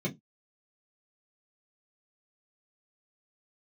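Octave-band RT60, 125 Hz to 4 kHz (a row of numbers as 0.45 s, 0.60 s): 0.20 s, 0.20 s, 0.20 s, 0.15 s, 0.10 s, 0.15 s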